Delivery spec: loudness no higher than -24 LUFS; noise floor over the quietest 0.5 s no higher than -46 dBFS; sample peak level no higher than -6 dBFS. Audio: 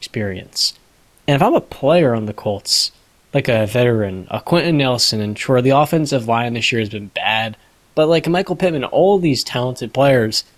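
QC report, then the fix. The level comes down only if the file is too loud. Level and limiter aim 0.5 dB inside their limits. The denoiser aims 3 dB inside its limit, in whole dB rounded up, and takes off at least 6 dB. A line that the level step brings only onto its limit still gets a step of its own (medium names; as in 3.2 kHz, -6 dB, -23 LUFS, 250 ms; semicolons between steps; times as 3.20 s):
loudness -16.5 LUFS: fail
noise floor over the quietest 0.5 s -53 dBFS: pass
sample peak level -3.0 dBFS: fail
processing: trim -8 dB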